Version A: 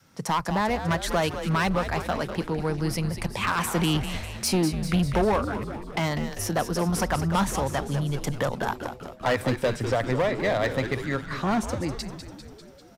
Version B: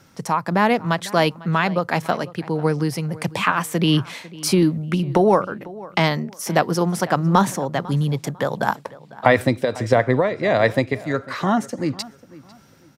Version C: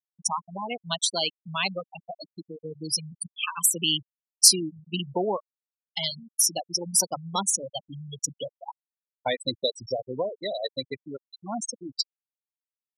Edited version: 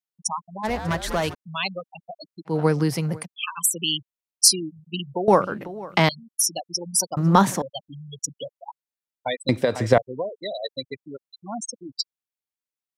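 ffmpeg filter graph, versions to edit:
-filter_complex "[1:a]asplit=4[a][b][c][d];[2:a]asplit=6[e][f][g][h][i][j];[e]atrim=end=0.65[k];[0:a]atrim=start=0.63:end=1.35[l];[f]atrim=start=1.33:end=2.55[m];[a]atrim=start=2.45:end=3.26[n];[g]atrim=start=3.16:end=5.282[o];[b]atrim=start=5.278:end=6.092[p];[h]atrim=start=6.088:end=7.172[q];[c]atrim=start=7.168:end=7.622[r];[i]atrim=start=7.618:end=9.492[s];[d]atrim=start=9.488:end=9.982[t];[j]atrim=start=9.978[u];[k][l]acrossfade=d=0.02:c1=tri:c2=tri[v];[v][m]acrossfade=d=0.02:c1=tri:c2=tri[w];[w][n]acrossfade=d=0.1:c1=tri:c2=tri[x];[x][o]acrossfade=d=0.1:c1=tri:c2=tri[y];[y][p]acrossfade=d=0.004:c1=hsin:c2=hsin[z];[z][q]acrossfade=d=0.004:c1=hsin:c2=hsin[aa];[aa][r]acrossfade=d=0.004:c1=hsin:c2=hsin[ab];[ab][s]acrossfade=d=0.004:c1=hsin:c2=hsin[ac];[ac][t]acrossfade=d=0.004:c1=hsin:c2=hsin[ad];[ad][u]acrossfade=d=0.004:c1=hsin:c2=hsin"

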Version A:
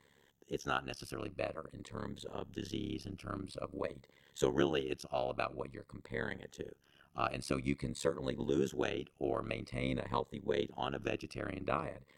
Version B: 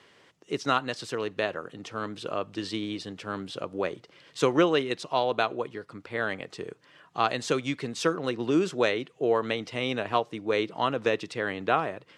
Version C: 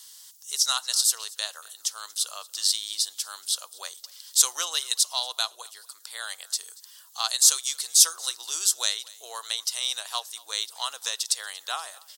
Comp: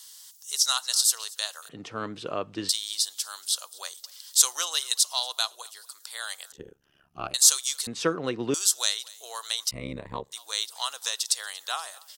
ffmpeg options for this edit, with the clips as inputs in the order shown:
-filter_complex "[1:a]asplit=2[a][b];[0:a]asplit=2[c][d];[2:a]asplit=5[e][f][g][h][i];[e]atrim=end=1.692[j];[a]atrim=start=1.688:end=2.692[k];[f]atrim=start=2.688:end=6.522[l];[c]atrim=start=6.518:end=7.342[m];[g]atrim=start=7.338:end=7.872[n];[b]atrim=start=7.868:end=8.542[o];[h]atrim=start=8.538:end=9.712[p];[d]atrim=start=9.708:end=10.322[q];[i]atrim=start=10.318[r];[j][k]acrossfade=d=0.004:c1=hsin:c2=hsin[s];[s][l]acrossfade=d=0.004:c1=hsin:c2=hsin[t];[t][m]acrossfade=d=0.004:c1=hsin:c2=hsin[u];[u][n]acrossfade=d=0.004:c1=hsin:c2=hsin[v];[v][o]acrossfade=d=0.004:c1=hsin:c2=hsin[w];[w][p]acrossfade=d=0.004:c1=hsin:c2=hsin[x];[x][q]acrossfade=d=0.004:c1=hsin:c2=hsin[y];[y][r]acrossfade=d=0.004:c1=hsin:c2=hsin"

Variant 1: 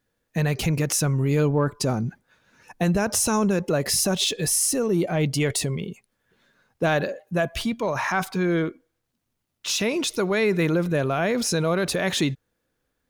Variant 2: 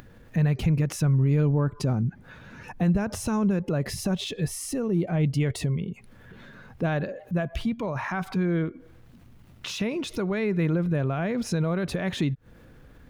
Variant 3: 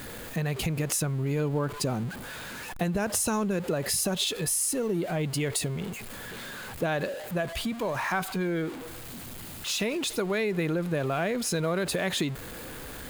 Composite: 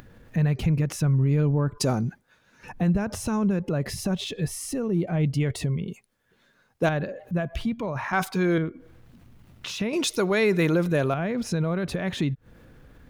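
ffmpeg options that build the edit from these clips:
-filter_complex "[0:a]asplit=4[a][b][c][d];[1:a]asplit=5[e][f][g][h][i];[e]atrim=end=1.782[j];[a]atrim=start=1.778:end=2.632[k];[f]atrim=start=2.628:end=5.882[l];[b]atrim=start=5.878:end=6.892[m];[g]atrim=start=6.888:end=8.132[n];[c]atrim=start=8.128:end=8.582[o];[h]atrim=start=8.578:end=9.932[p];[d]atrim=start=9.928:end=11.142[q];[i]atrim=start=11.138[r];[j][k]acrossfade=d=0.004:c1=hsin:c2=hsin[s];[s][l]acrossfade=d=0.004:c1=hsin:c2=hsin[t];[t][m]acrossfade=d=0.004:c1=hsin:c2=hsin[u];[u][n]acrossfade=d=0.004:c1=hsin:c2=hsin[v];[v][o]acrossfade=d=0.004:c1=hsin:c2=hsin[w];[w][p]acrossfade=d=0.004:c1=hsin:c2=hsin[x];[x][q]acrossfade=d=0.004:c1=hsin:c2=hsin[y];[y][r]acrossfade=d=0.004:c1=hsin:c2=hsin"

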